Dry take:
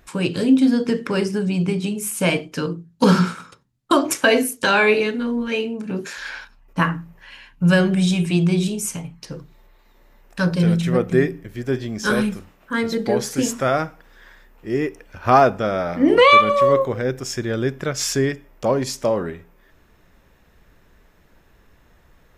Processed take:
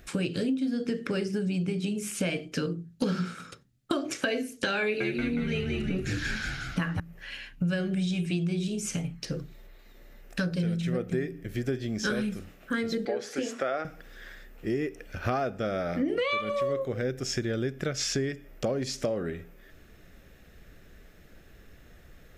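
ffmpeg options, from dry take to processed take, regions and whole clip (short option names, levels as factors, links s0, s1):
-filter_complex "[0:a]asettb=1/sr,asplit=3[s0][s1][s2];[s0]atrim=end=4.824[s3];[s1]atrim=start=4.82:end=7,asetpts=PTS-STARTPTS,afade=t=in:d=0.004:c=qsin,afade=t=out:st=2.176:d=0.004:c=qsin,aphaser=in_gain=1:out_gain=1:delay=1.3:decay=0.27:speed=1.7:type=triangular,asplit=8[s4][s5][s6][s7][s8][s9][s10][s11];[s5]adelay=182,afreqshift=-79,volume=0.562[s12];[s6]adelay=364,afreqshift=-158,volume=0.299[s13];[s7]adelay=546,afreqshift=-237,volume=0.158[s14];[s8]adelay=728,afreqshift=-316,volume=0.0841[s15];[s9]adelay=910,afreqshift=-395,volume=0.0442[s16];[s10]adelay=1092,afreqshift=-474,volume=0.0234[s17];[s11]adelay=1274,afreqshift=-553,volume=0.0124[s18];[s4][s12][s13][s14][s15][s16][s17][s18]amix=inputs=8:normalize=0,atrim=end_sample=96138[s19];[s2]atrim=start=6.996[s20];[s3][s19]acrossfade=d=0.004:c1=hsin:c2=qsin[s21];[s21][s20]acrossfade=d=0.004:c1=qsin:c2=hsin,asettb=1/sr,asplit=3[s22][s23][s24];[s22]atrim=end=13.054[s25];[s23]atrim=start=13.05:end=13.85,asetpts=PTS-STARTPTS,afade=t=in:d=0.004:c=qsin,afade=t=out:st=0.796:d=0.004:c=qsin,highpass=440,aemphasis=mode=reproduction:type=75fm[s26];[s24]atrim=start=13.846[s27];[s25][s26]acrossfade=d=0.004:c1=hsin:c2=qsin[s28];[s28][s27]acrossfade=d=0.004:c1=qsin:c2=hsin,acrossover=split=6600[s29][s30];[s30]acompressor=threshold=0.00447:ratio=4:attack=1:release=60[s31];[s29][s31]amix=inputs=2:normalize=0,equalizer=f=970:t=o:w=0.39:g=-15,acompressor=threshold=0.0355:ratio=6,volume=1.26"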